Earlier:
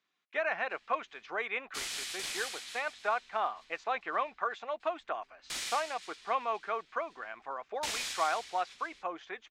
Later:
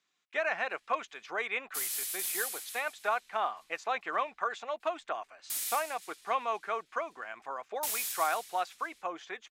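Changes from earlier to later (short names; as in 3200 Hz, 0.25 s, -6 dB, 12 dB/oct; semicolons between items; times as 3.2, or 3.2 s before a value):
background -9.5 dB; master: remove air absorption 130 m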